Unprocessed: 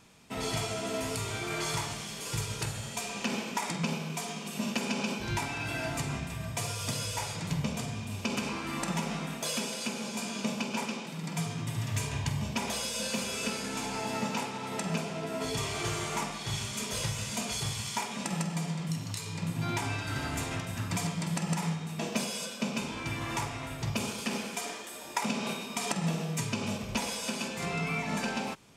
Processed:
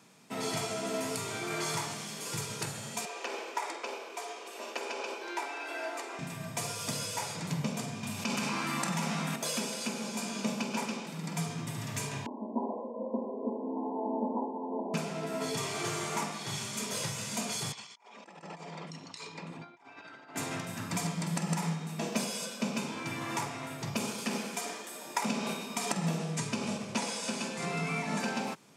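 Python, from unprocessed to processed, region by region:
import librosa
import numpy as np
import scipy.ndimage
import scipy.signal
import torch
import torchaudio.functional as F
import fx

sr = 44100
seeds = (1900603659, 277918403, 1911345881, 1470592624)

y = fx.chain(x, sr, fx.steep_highpass(hz=330.0, slope=48),
    fx.high_shelf(hz=4500.0, db=-10.0), at=(3.05, 6.19))
y = fx.chain(y, sr, fx.peak_eq(hz=390.0, db=-7.5, octaves=1.3),
    fx.env_flatten(amount_pct=70), at=(8.03, 9.36))
y = fx.chain(y, sr, fx.brickwall_bandpass(low_hz=220.0, high_hz=1100.0),
    fx.tilt_eq(slope=-3.0), at=(12.26, 14.94))
y = fx.chain(y, sr, fx.envelope_sharpen(power=1.5),
    fx.bandpass_edges(low_hz=420.0, high_hz=4800.0),
    fx.over_compress(threshold_db=-46.0, ratio=-0.5), at=(17.72, 20.36))
y = fx.chain(y, sr, fx.cvsd(bps=64000),
    fx.lowpass(hz=10000.0, slope=24), at=(26.18, 28.2))
y = scipy.signal.sosfilt(scipy.signal.butter(4, 140.0, 'highpass', fs=sr, output='sos'), y)
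y = fx.peak_eq(y, sr, hz=3000.0, db=-3.5, octaves=0.72)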